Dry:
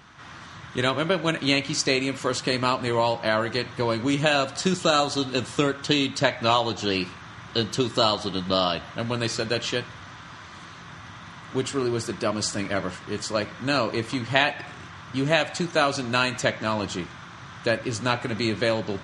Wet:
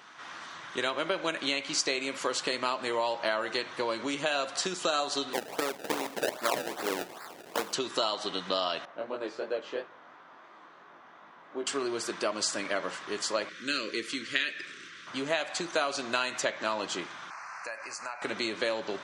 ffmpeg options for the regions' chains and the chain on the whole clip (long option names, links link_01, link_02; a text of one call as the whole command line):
ffmpeg -i in.wav -filter_complex "[0:a]asettb=1/sr,asplit=3[link_01][link_02][link_03];[link_01]atrim=end=5.334[link_04];[link_02]atrim=start=5.33:end=7.73,asetpts=PTS-STARTPTS,afade=type=in:duration=0.004:curve=qsin,afade=type=out:start_time=2.396:duration=0.004:curve=qsin,highpass=frequency=290:poles=1,acrusher=samples=28:mix=1:aa=0.000001:lfo=1:lforange=28:lforate=2.5[link_05];[link_03]atrim=start=7.726[link_06];[link_04][link_05]acrossfade=duration=0.004:curve1=hsin:curve2=qsin[link_07];[link_07][link_06]acrossfade=duration=0.004:curve1=qsin:curve2=hsin,asettb=1/sr,asplit=3[link_08][link_09][link_10];[link_08]atrim=end=8.854[link_11];[link_09]atrim=start=8.85:end=11.67,asetpts=PTS-STARTPTS,afade=type=in:duration=0.004:curve=qsin,afade=type=out:start_time=2.816:duration=0.004:curve=qsin,bandpass=frequency=480:width_type=q:width=0.79,flanger=delay=18.5:depth=6:speed=2.9[link_12];[link_10]atrim=start=11.666[link_13];[link_11][link_12]acrossfade=duration=0.004:curve1=hsin:curve2=qsin[link_14];[link_14][link_13]acrossfade=duration=0.004:curve1=qsin:curve2=hsin,asettb=1/sr,asplit=3[link_15][link_16][link_17];[link_15]atrim=end=13.494[link_18];[link_16]atrim=start=13.49:end=15.07,asetpts=PTS-STARTPTS,afade=type=in:duration=0.004:curve=qsin,afade=type=out:start_time=1.576:duration=0.004:curve=qsin,asuperstop=centerf=810:order=4:qfactor=0.72,equalizer=frequency=110:width_type=o:width=1.2:gain=-7[link_19];[link_17]atrim=start=15.066[link_20];[link_18][link_19]acrossfade=duration=0.004:curve1=hsin:curve2=qsin[link_21];[link_21][link_20]acrossfade=duration=0.004:curve1=qsin:curve2=hsin,asettb=1/sr,asplit=3[link_22][link_23][link_24];[link_22]atrim=end=17.304[link_25];[link_23]atrim=start=17.3:end=18.22,asetpts=PTS-STARTPTS,afade=type=in:duration=0.004:curve=qsin,afade=type=out:start_time=0.916:duration=0.004:curve=qsin,lowshelf=frequency=540:width_type=q:width=1.5:gain=-13.5,acompressor=threshold=-35dB:ratio=4:attack=3.2:release=140:knee=1:detection=peak,asuperstop=centerf=3400:order=8:qfactor=2[link_26];[link_24]atrim=start=18.216[link_27];[link_25][link_26]acrossfade=duration=0.004:curve1=hsin:curve2=qsin[link_28];[link_28][link_27]acrossfade=duration=0.004:curve1=qsin:curve2=hsin,acompressor=threshold=-24dB:ratio=6,highpass=390" out.wav